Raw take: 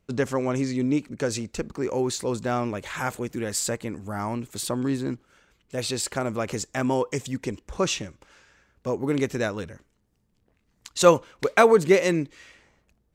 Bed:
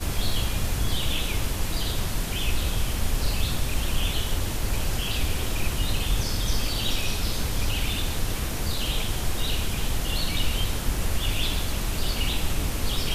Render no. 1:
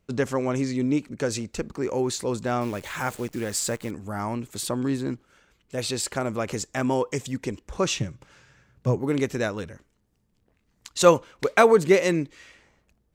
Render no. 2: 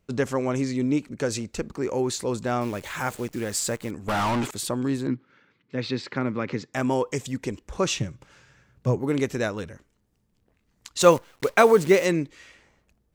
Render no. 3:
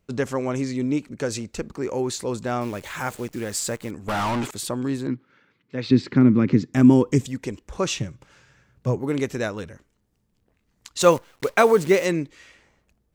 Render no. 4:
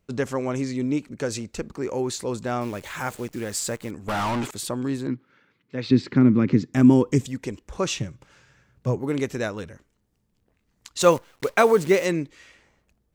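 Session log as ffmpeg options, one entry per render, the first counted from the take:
ffmpeg -i in.wav -filter_complex "[0:a]asettb=1/sr,asplit=3[link_01][link_02][link_03];[link_01]atrim=end=2.614[link_04];[link_02]atrim=start=2.61:end=3.91,asetpts=PTS-STARTPTS,afade=type=in:duration=0.004:curve=qsin,afade=type=out:start_time=1.296:duration=0.004:curve=qsin,acrusher=bits=8:dc=4:mix=0:aa=0.000001[link_05];[link_03]atrim=start=3.906[link_06];[link_04][link_05]acrossfade=duration=0.004:curve1=hsin:curve2=qsin[link_07];[link_07][link_06]acrossfade=duration=0.004:curve1=qsin:curve2=hsin,asettb=1/sr,asplit=3[link_08][link_09][link_10];[link_08]atrim=end=8.004[link_11];[link_09]atrim=start=8:end=8.99,asetpts=PTS-STARTPTS,afade=type=in:duration=0.004:curve=qsin,afade=type=out:start_time=0.986:duration=0.004:curve=qsin,equalizer=frequency=130:width=1.6:gain=14[link_12];[link_10]atrim=start=8.986[link_13];[link_11][link_12]acrossfade=duration=0.004:curve1=hsin:curve2=qsin[link_14];[link_14][link_13]acrossfade=duration=0.004:curve1=qsin:curve2=hsin" out.wav
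ffmpeg -i in.wav -filter_complex "[0:a]asettb=1/sr,asplit=3[link_01][link_02][link_03];[link_01]atrim=end=4.084[link_04];[link_02]atrim=start=4.08:end=4.51,asetpts=PTS-STARTPTS,afade=type=in:duration=0.004:curve=qsin,afade=type=out:start_time=0.426:duration=0.004:curve=qsin,asplit=2[link_05][link_06];[link_06]highpass=frequency=720:poles=1,volume=34dB,asoftclip=type=tanh:threshold=-18dB[link_07];[link_05][link_07]amix=inputs=2:normalize=0,lowpass=frequency=3000:poles=1,volume=-6dB[link_08];[link_03]atrim=start=4.506[link_09];[link_04][link_08]acrossfade=duration=0.004:curve1=hsin:curve2=qsin[link_10];[link_10][link_09]acrossfade=duration=0.004:curve1=qsin:curve2=hsin,asettb=1/sr,asplit=3[link_11][link_12][link_13];[link_11]atrim=end=5.074[link_14];[link_12]atrim=start=5.07:end=6.74,asetpts=PTS-STARTPTS,afade=type=in:duration=0.004:curve=qsin,afade=type=out:start_time=1.666:duration=0.004:curve=qsin,highpass=frequency=110:width=0.5412,highpass=frequency=110:width=1.3066,equalizer=frequency=130:width_type=q:width=4:gain=4,equalizer=frequency=260:width_type=q:width=4:gain=6,equalizer=frequency=680:width_type=q:width=4:gain=-10,equalizer=frequency=2000:width_type=q:width=4:gain=4,equalizer=frequency=3000:width_type=q:width=4:gain=-5,lowpass=frequency=4200:width=0.5412,lowpass=frequency=4200:width=1.3066[link_15];[link_13]atrim=start=6.736[link_16];[link_14][link_15]acrossfade=duration=0.004:curve1=hsin:curve2=qsin[link_17];[link_17][link_16]acrossfade=duration=0.004:curve1=qsin:curve2=hsin,asettb=1/sr,asplit=3[link_18][link_19][link_20];[link_18]atrim=end=11.004[link_21];[link_19]atrim=start=11:end=12.06,asetpts=PTS-STARTPTS,afade=type=in:duration=0.004:curve=qsin,afade=type=out:start_time=1.056:duration=0.004:curve=qsin,acrusher=bits=7:dc=4:mix=0:aa=0.000001[link_22];[link_20]atrim=start=12.056[link_23];[link_21][link_22]acrossfade=duration=0.004:curve1=hsin:curve2=qsin[link_24];[link_24][link_23]acrossfade=duration=0.004:curve1=qsin:curve2=hsin" out.wav
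ffmpeg -i in.wav -filter_complex "[0:a]asettb=1/sr,asplit=3[link_01][link_02][link_03];[link_01]atrim=end=5.914[link_04];[link_02]atrim=start=5.91:end=7.26,asetpts=PTS-STARTPTS,afade=type=in:duration=0.004:curve=qsin,afade=type=out:start_time=1.346:duration=0.004:curve=qsin,lowshelf=frequency=410:width_type=q:width=1.5:gain=11[link_05];[link_03]atrim=start=7.256[link_06];[link_04][link_05]acrossfade=duration=0.004:curve1=hsin:curve2=qsin[link_07];[link_07][link_06]acrossfade=duration=0.004:curve1=qsin:curve2=hsin" out.wav
ffmpeg -i in.wav -af "volume=-1dB" out.wav

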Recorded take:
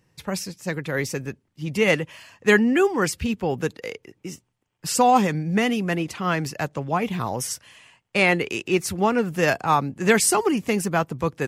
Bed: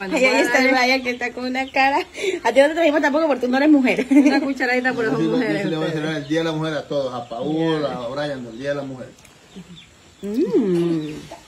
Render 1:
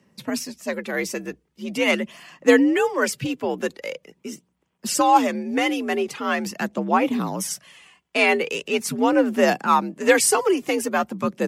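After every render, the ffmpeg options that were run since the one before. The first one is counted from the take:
ffmpeg -i in.wav -af "aphaser=in_gain=1:out_gain=1:delay=3.1:decay=0.41:speed=0.43:type=sinusoidal,afreqshift=61" out.wav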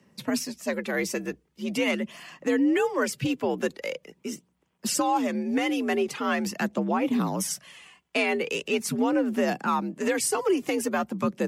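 ffmpeg -i in.wav -filter_complex "[0:a]acrossover=split=340[link_01][link_02];[link_02]acompressor=threshold=-30dB:ratio=1.5[link_03];[link_01][link_03]amix=inputs=2:normalize=0,alimiter=limit=-15dB:level=0:latency=1:release=221" out.wav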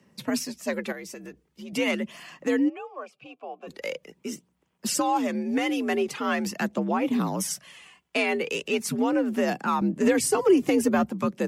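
ffmpeg -i in.wav -filter_complex "[0:a]asettb=1/sr,asplit=3[link_01][link_02][link_03];[link_01]atrim=end=0.924[link_04];[link_02]atrim=start=0.92:end=1.73,asetpts=PTS-STARTPTS,afade=type=in:duration=0.004:curve=qsin,afade=type=out:start_time=0.806:duration=0.004:curve=qsin,acompressor=threshold=-38dB:ratio=4:attack=3.2:release=140:knee=1:detection=peak[link_05];[link_03]atrim=start=1.726[link_06];[link_04][link_05]acrossfade=duration=0.004:curve1=hsin:curve2=qsin[link_07];[link_07][link_06]acrossfade=duration=0.004:curve1=qsin:curve2=hsin,asplit=3[link_08][link_09][link_10];[link_08]afade=type=out:start_time=2.68:duration=0.02[link_11];[link_09]asplit=3[link_12][link_13][link_14];[link_12]bandpass=frequency=730:width_type=q:width=8,volume=0dB[link_15];[link_13]bandpass=frequency=1090:width_type=q:width=8,volume=-6dB[link_16];[link_14]bandpass=frequency=2440:width_type=q:width=8,volume=-9dB[link_17];[link_15][link_16][link_17]amix=inputs=3:normalize=0,afade=type=in:start_time=2.68:duration=0.02,afade=type=out:start_time=3.67:duration=0.02[link_18];[link_10]afade=type=in:start_time=3.67:duration=0.02[link_19];[link_11][link_18][link_19]amix=inputs=3:normalize=0,asettb=1/sr,asplit=3[link_20][link_21][link_22];[link_20]atrim=end=9.814[link_23];[link_21]atrim=start=9.81:end=11.11,asetpts=PTS-STARTPTS,afade=type=in:duration=0.004:curve=qsin,afade=type=out:start_time=1.296:duration=0.004:curve=qsin,lowshelf=frequency=350:gain=11[link_24];[link_22]atrim=start=11.106[link_25];[link_23][link_24]acrossfade=duration=0.004:curve1=hsin:curve2=qsin[link_26];[link_26][link_25]acrossfade=duration=0.004:curve1=qsin:curve2=hsin" out.wav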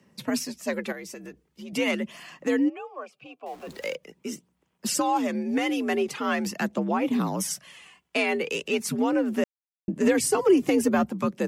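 ffmpeg -i in.wav -filter_complex "[0:a]asettb=1/sr,asplit=3[link_01][link_02][link_03];[link_01]atrim=end=3.464[link_04];[link_02]atrim=start=3.46:end=3.95,asetpts=PTS-STARTPTS,afade=type=in:duration=0.004:curve=qsin,afade=type=out:start_time=0.486:duration=0.004:curve=qsin,aeval=exprs='val(0)+0.5*0.00596*sgn(val(0))':channel_layout=same[link_05];[link_03]atrim=start=3.946[link_06];[link_04][link_05]acrossfade=duration=0.004:curve1=hsin:curve2=qsin[link_07];[link_07][link_06]acrossfade=duration=0.004:curve1=qsin:curve2=hsin,asplit=3[link_08][link_09][link_10];[link_08]atrim=end=9.44,asetpts=PTS-STARTPTS,afade=type=out:start_time=9.436:duration=0.004:curve=hsin[link_11];[link_09]atrim=start=9.44:end=9.88,asetpts=PTS-STARTPTS,volume=0[link_12];[link_10]atrim=start=9.88,asetpts=PTS-STARTPTS,afade=type=in:duration=0.004:curve=hsin[link_13];[link_11][link_12][link_13]concat=n=3:v=0:a=1" out.wav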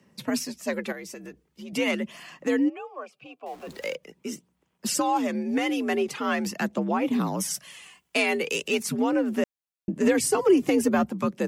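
ffmpeg -i in.wav -filter_complex "[0:a]asettb=1/sr,asplit=3[link_01][link_02][link_03];[link_01]atrim=end=7.544[link_04];[link_02]atrim=start=7.54:end=8.83,asetpts=PTS-STARTPTS,afade=type=in:duration=0.004:curve=qsin,afade=type=out:start_time=1.286:duration=0.004:curve=qsin,highshelf=frequency=4800:gain=9[link_05];[link_03]atrim=start=8.826[link_06];[link_04][link_05]acrossfade=duration=0.004:curve1=hsin:curve2=qsin[link_07];[link_07][link_06]acrossfade=duration=0.004:curve1=qsin:curve2=hsin" out.wav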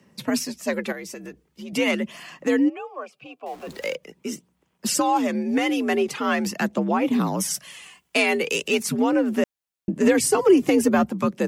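ffmpeg -i in.wav -af "volume=3.5dB" out.wav

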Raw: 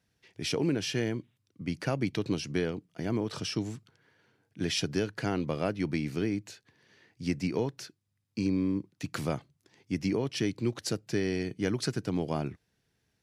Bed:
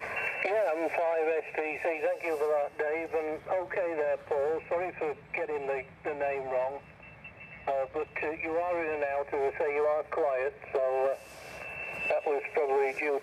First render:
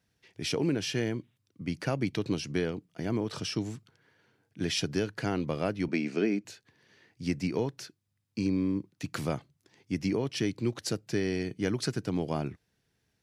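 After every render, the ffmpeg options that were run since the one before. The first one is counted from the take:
ffmpeg -i in.wav -filter_complex "[0:a]asettb=1/sr,asplit=3[link_01][link_02][link_03];[link_01]atrim=end=5.884[link_04];[link_02]atrim=start=5.88:end=6.45,asetpts=PTS-STARTPTS,afade=type=in:duration=0.004:curve=qsin,afade=type=out:start_time=0.566:duration=0.004:curve=qsin,highpass=frequency=190:width=0.5412,highpass=frequency=190:width=1.3066,equalizer=frequency=210:width_type=q:width=4:gain=5,equalizer=frequency=400:width_type=q:width=4:gain=6,equalizer=frequency=640:width_type=q:width=4:gain=8,equalizer=frequency=1500:width_type=q:width=4:gain=4,equalizer=frequency=2500:width_type=q:width=4:gain=6,equalizer=frequency=3600:width_type=q:width=4:gain=-3,lowpass=frequency=7900:width=0.5412,lowpass=frequency=7900:width=1.3066[link_05];[link_03]atrim=start=6.446[link_06];[link_04][link_05]acrossfade=duration=0.004:curve1=hsin:curve2=qsin[link_07];[link_07][link_06]acrossfade=duration=0.004:curve1=qsin:curve2=hsin" out.wav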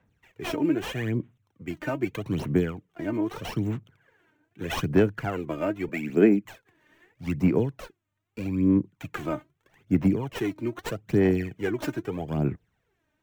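ffmpeg -i in.wav -filter_complex "[0:a]acrossover=split=210|560|3300[link_01][link_02][link_03][link_04];[link_04]acrusher=samples=9:mix=1:aa=0.000001[link_05];[link_01][link_02][link_03][link_05]amix=inputs=4:normalize=0,aphaser=in_gain=1:out_gain=1:delay=3.3:decay=0.69:speed=0.8:type=sinusoidal" out.wav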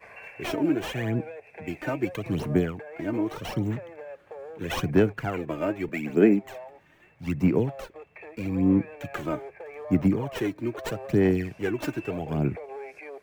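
ffmpeg -i in.wav -i bed.wav -filter_complex "[1:a]volume=-11.5dB[link_01];[0:a][link_01]amix=inputs=2:normalize=0" out.wav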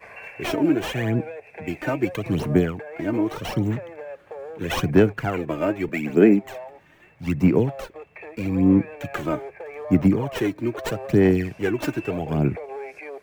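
ffmpeg -i in.wav -af "volume=4.5dB,alimiter=limit=-3dB:level=0:latency=1" out.wav

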